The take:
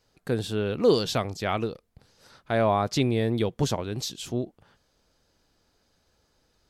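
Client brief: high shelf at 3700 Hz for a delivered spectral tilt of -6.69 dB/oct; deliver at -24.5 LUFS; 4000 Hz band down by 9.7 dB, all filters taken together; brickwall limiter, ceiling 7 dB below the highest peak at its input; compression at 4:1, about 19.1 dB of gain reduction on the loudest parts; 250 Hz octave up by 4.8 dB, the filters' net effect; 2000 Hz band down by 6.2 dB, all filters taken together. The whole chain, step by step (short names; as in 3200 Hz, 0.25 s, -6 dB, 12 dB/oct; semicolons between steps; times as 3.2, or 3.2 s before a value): bell 250 Hz +6 dB; bell 2000 Hz -5.5 dB; high shelf 3700 Hz -4.5 dB; bell 4000 Hz -7.5 dB; compressor 4:1, threshold -38 dBFS; gain +18 dB; limiter -14 dBFS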